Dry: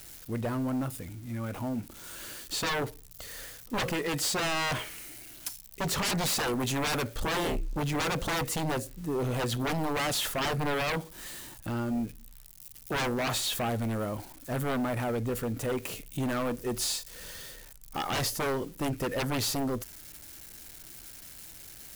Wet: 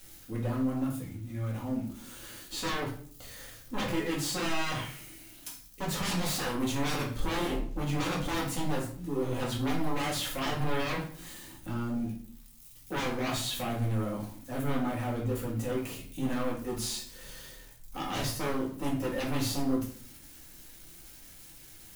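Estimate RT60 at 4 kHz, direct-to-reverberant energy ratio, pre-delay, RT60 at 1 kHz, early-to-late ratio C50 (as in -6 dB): 0.40 s, -4.5 dB, 4 ms, 0.45 s, 6.5 dB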